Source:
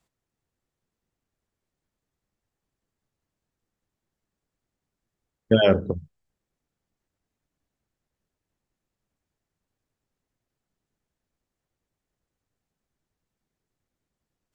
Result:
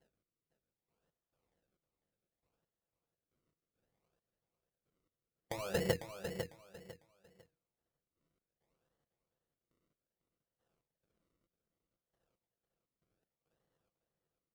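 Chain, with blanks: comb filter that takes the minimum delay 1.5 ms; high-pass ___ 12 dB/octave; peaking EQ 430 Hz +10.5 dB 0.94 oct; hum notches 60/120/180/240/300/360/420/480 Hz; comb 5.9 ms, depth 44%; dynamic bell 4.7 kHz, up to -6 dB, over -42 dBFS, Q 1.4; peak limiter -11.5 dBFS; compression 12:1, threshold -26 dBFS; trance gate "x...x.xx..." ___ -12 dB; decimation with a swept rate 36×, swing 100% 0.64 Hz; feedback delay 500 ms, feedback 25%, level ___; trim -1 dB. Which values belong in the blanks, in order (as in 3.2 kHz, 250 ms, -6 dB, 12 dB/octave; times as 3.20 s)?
46 Hz, 68 bpm, -7.5 dB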